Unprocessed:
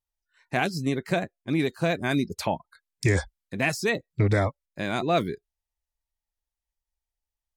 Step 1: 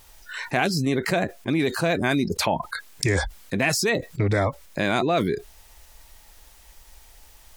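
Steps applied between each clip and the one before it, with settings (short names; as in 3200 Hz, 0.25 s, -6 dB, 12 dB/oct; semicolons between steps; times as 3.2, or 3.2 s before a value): tone controls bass -3 dB, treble -1 dB; fast leveller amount 70%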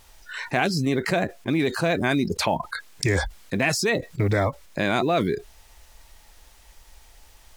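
high shelf 11000 Hz -8 dB; companded quantiser 8-bit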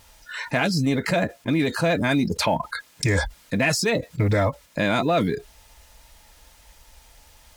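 notch comb 380 Hz; in parallel at -8.5 dB: soft clip -18 dBFS, distortion -16 dB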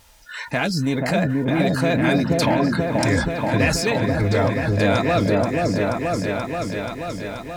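repeats that get brighter 0.481 s, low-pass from 750 Hz, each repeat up 1 oct, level 0 dB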